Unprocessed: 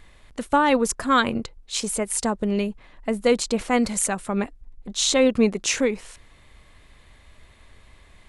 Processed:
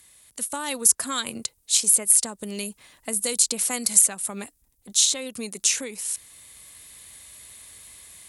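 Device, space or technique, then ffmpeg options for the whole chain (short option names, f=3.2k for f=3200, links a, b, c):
FM broadcast chain: -filter_complex "[0:a]highpass=75,dynaudnorm=f=460:g=3:m=8dB,acrossover=split=110|4400[a][b][c];[a]acompressor=threshold=-47dB:ratio=4[d];[b]acompressor=threshold=-18dB:ratio=4[e];[c]acompressor=threshold=-31dB:ratio=4[f];[d][e][f]amix=inputs=3:normalize=0,aemphasis=mode=production:type=75fm,alimiter=limit=-4dB:level=0:latency=1:release=480,asoftclip=type=hard:threshold=-5dB,lowpass=f=15k:w=0.5412,lowpass=f=15k:w=1.3066,aemphasis=mode=production:type=75fm,volume=-10.5dB"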